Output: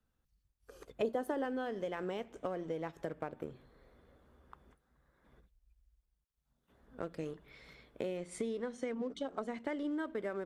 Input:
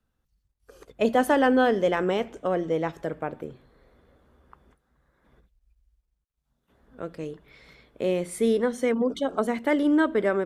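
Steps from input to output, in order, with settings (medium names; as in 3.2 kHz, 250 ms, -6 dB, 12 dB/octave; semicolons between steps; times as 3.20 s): in parallel at -3.5 dB: crossover distortion -38 dBFS; 8.17–9.91 s: on the sum: low-pass 8.4 kHz 24 dB/octave; compression 8:1, threshold -31 dBFS, peak gain reduction 19 dB; 1.02–1.45 s: fifteen-band graphic EQ 400 Hz +9 dB, 2.5 kHz -6 dB, 6.3 kHz -3 dB; trim -4.5 dB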